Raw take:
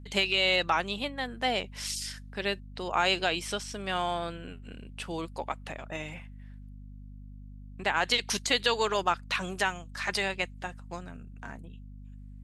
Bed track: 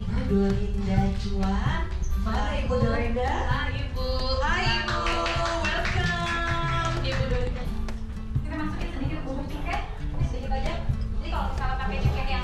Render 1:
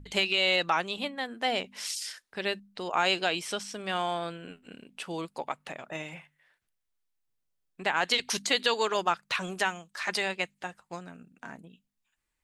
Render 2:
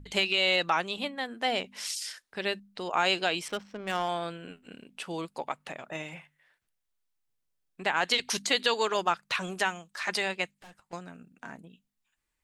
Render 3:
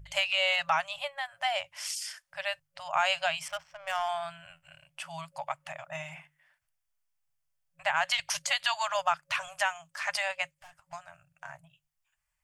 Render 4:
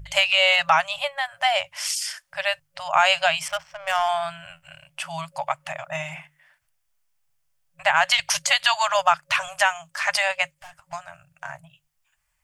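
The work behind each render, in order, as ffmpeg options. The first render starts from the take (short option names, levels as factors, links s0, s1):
-af "bandreject=f=50:t=h:w=4,bandreject=f=100:t=h:w=4,bandreject=f=150:t=h:w=4,bandreject=f=200:t=h:w=4,bandreject=f=250:t=h:w=4"
-filter_complex "[0:a]asettb=1/sr,asplit=3[s0][s1][s2];[s0]atrim=end=3.484[s3];[s1]atrim=start=3.48:end=4.09,asetpts=PTS-STARTPTS,afade=t=in:d=0.004:c=qsin,afade=t=out:st=0.606:d=0.004:c=qsin,adynamicsmooth=sensitivity=5.5:basefreq=1100[s4];[s2]atrim=start=4.086[s5];[s3][s4]acrossfade=d=0.004:c1=hsin:c2=qsin[s6];[s6][s5]acrossfade=d=0.004:c1=qsin:c2=hsin,asettb=1/sr,asplit=3[s7][s8][s9];[s7]atrim=end=10.514[s10];[s8]atrim=start=10.51:end=10.93,asetpts=PTS-STARTPTS,afade=t=in:d=0.004:c=qsin,afade=t=out:st=0.416:d=0.004:c=qsin,aeval=exprs='(tanh(251*val(0)+0.55)-tanh(0.55))/251':c=same[s11];[s9]atrim=start=10.926[s12];[s10][s11]acrossfade=d=0.004:c1=hsin:c2=qsin[s13];[s13][s12]acrossfade=d=0.004:c1=qsin:c2=hsin"
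-af "afftfilt=real='re*(1-between(b*sr/4096,170,550))':imag='im*(1-between(b*sr/4096,170,550))':win_size=4096:overlap=0.75,equalizer=f=3900:w=6:g=-10"
-af "volume=2.82"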